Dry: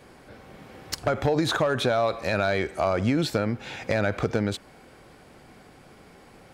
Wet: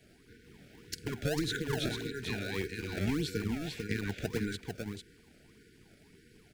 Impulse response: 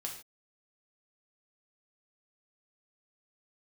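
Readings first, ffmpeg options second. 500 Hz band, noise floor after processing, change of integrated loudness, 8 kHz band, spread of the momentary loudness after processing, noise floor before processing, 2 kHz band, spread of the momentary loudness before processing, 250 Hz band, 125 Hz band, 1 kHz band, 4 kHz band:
−13.0 dB, −62 dBFS, −10.0 dB, −5.0 dB, 9 LU, −52 dBFS, −8.5 dB, 7 LU, −7.0 dB, −7.0 dB, −18.0 dB, −6.5 dB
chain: -filter_complex "[0:a]aecho=1:1:447:0.531,tremolo=f=300:d=0.667,afftfilt=real='re*(1-between(b*sr/4096,490,1400))':imag='im*(1-between(b*sr/4096,490,1400))':win_size=4096:overlap=0.75,acrossover=split=290|1500|3300[link_01][link_02][link_03][link_04];[link_02]acrusher=samples=25:mix=1:aa=0.000001:lfo=1:lforange=40:lforate=1.7[link_05];[link_01][link_05][link_03][link_04]amix=inputs=4:normalize=0,volume=-5dB"

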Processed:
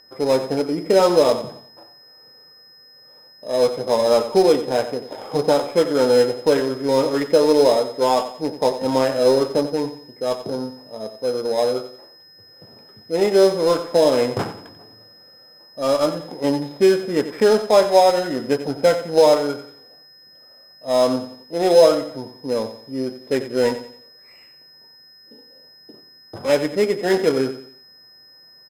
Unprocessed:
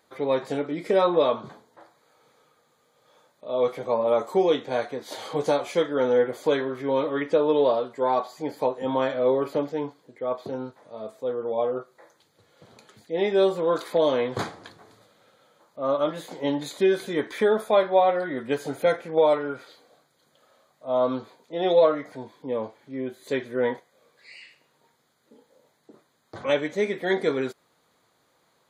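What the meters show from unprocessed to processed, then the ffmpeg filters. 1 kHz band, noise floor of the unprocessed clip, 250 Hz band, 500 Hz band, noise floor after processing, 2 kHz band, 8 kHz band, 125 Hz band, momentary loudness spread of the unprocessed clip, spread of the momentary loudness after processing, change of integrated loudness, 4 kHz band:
+4.5 dB, −67 dBFS, +6.5 dB, +6.0 dB, −49 dBFS, +3.0 dB, can't be measured, +7.0 dB, 13 LU, 13 LU, +6.0 dB, +9.5 dB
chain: -filter_complex "[0:a]highshelf=frequency=2100:gain=-11,bandreject=frequency=1100:width=18,aeval=exprs='val(0)+0.0316*sin(2*PI*5100*n/s)':channel_layout=same,adynamicsmooth=sensitivity=5:basefreq=540,asplit=2[link_01][link_02];[link_02]aecho=0:1:90|180|270|360:0.251|0.0904|0.0326|0.0117[link_03];[link_01][link_03]amix=inputs=2:normalize=0,volume=6.5dB"

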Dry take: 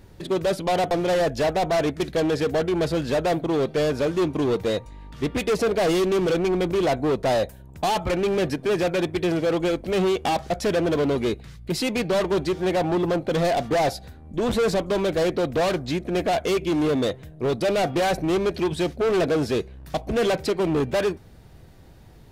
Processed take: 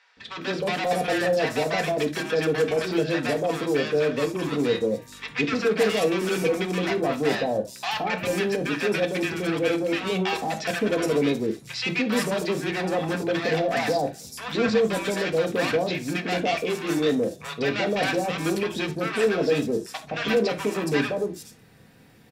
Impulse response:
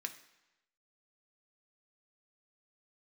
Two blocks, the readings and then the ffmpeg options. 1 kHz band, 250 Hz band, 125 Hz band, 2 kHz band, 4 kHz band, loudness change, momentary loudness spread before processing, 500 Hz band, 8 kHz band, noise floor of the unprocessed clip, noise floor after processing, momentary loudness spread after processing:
−2.5 dB, −1.5 dB, −3.0 dB, +4.0 dB, +0.5 dB, −1.5 dB, 5 LU, −2.0 dB, 0.0 dB, −47 dBFS, −48 dBFS, 5 LU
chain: -filter_complex "[0:a]acrossover=split=830|5700[link_01][link_02][link_03];[link_01]adelay=170[link_04];[link_03]adelay=420[link_05];[link_04][link_02][link_05]amix=inputs=3:normalize=0[link_06];[1:a]atrim=start_sample=2205,atrim=end_sample=3969[link_07];[link_06][link_07]afir=irnorm=-1:irlink=0,volume=4dB"

